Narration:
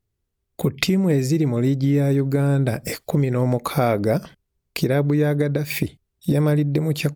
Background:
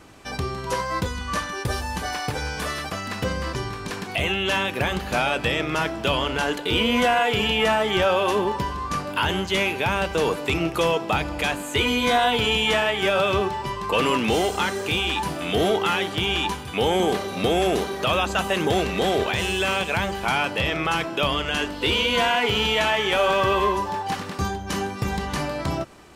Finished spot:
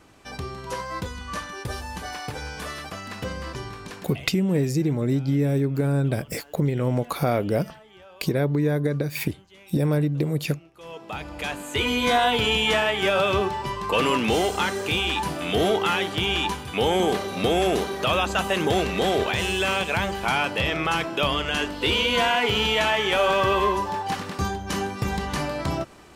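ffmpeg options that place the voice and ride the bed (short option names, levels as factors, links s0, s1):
-filter_complex "[0:a]adelay=3450,volume=0.668[s0];[1:a]volume=13.3,afade=t=out:st=3.8:d=0.52:silence=0.0707946,afade=t=in:st=10.77:d=1.33:silence=0.0398107[s1];[s0][s1]amix=inputs=2:normalize=0"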